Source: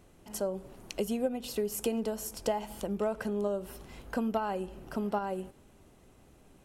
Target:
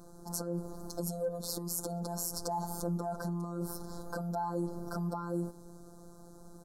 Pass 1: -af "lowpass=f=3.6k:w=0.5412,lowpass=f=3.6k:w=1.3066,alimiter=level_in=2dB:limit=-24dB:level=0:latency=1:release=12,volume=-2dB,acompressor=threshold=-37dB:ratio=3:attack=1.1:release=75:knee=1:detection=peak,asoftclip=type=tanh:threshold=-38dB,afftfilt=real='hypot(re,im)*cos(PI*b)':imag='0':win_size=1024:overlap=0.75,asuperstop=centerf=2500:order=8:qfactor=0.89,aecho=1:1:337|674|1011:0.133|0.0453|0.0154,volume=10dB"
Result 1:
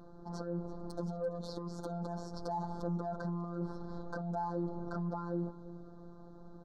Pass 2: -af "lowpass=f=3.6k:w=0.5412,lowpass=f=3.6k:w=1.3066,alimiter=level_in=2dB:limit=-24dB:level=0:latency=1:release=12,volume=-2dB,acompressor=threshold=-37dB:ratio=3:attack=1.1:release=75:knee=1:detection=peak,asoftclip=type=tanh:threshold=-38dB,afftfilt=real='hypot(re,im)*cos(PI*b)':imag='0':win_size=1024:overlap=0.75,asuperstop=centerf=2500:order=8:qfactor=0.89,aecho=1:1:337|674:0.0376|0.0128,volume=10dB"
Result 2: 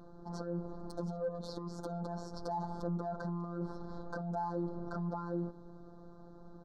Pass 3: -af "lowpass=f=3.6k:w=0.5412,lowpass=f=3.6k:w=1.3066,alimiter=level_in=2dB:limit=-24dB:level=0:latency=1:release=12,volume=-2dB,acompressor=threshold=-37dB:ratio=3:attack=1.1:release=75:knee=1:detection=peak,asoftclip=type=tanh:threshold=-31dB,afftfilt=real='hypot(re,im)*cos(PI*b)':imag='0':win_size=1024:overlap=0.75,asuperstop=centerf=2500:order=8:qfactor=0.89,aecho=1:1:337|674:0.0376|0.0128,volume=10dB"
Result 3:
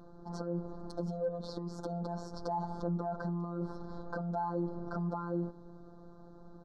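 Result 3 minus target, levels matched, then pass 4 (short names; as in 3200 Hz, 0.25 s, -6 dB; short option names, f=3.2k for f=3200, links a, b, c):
4000 Hz band -7.5 dB
-af "alimiter=level_in=2dB:limit=-24dB:level=0:latency=1:release=12,volume=-2dB,acompressor=threshold=-37dB:ratio=3:attack=1.1:release=75:knee=1:detection=peak,asoftclip=type=tanh:threshold=-31dB,afftfilt=real='hypot(re,im)*cos(PI*b)':imag='0':win_size=1024:overlap=0.75,asuperstop=centerf=2500:order=8:qfactor=0.89,aecho=1:1:337|674:0.0376|0.0128,volume=10dB"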